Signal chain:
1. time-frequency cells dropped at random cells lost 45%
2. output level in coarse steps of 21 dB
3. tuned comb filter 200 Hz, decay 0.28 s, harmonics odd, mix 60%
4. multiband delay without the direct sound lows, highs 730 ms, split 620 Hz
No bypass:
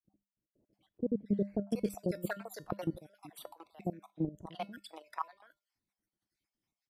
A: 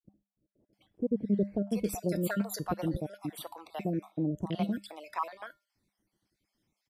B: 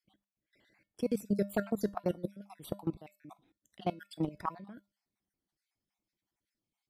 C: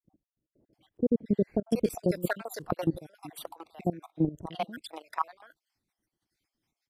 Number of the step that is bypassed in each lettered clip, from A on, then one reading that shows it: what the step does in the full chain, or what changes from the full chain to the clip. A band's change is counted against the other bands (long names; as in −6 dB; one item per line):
2, change in crest factor −3.0 dB
4, echo-to-direct ratio 10.5 dB to none audible
3, change in momentary loudness spread −2 LU